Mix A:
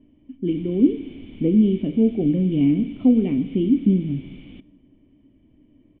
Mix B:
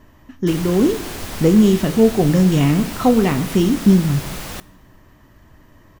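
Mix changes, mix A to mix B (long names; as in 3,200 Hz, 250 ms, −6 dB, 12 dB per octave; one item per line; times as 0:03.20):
speech: add parametric band 570 Hz −10 dB 1.4 octaves
master: remove formant resonators in series i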